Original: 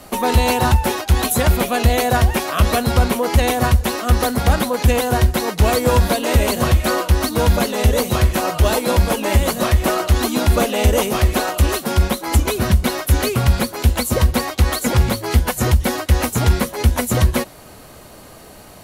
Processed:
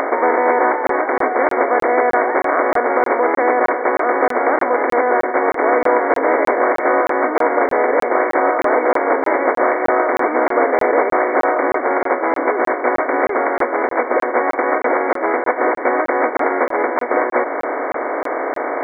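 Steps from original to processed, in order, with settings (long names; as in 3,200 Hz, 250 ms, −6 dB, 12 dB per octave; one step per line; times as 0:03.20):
compressor on every frequency bin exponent 0.4
upward compression, threshold −11 dBFS
linear-phase brick-wall band-pass 260–2,300 Hz
regular buffer underruns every 0.31 s, samples 1,024, zero, from 0:00.87
level −1 dB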